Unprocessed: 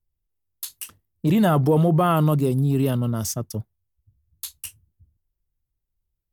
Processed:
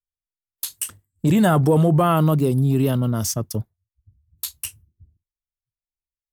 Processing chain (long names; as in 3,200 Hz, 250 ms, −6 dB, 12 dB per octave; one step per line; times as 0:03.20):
0:00.74–0:02.02: thirty-one-band graphic EQ 100 Hz +5 dB, 1,600 Hz +3 dB, 8,000 Hz +11 dB
noise reduction from a noise print of the clip's start 26 dB
in parallel at −1 dB: downward compressor, threshold −29 dBFS, peak gain reduction 14 dB
on the sum: pitch vibrato 1.4 Hz 43 cents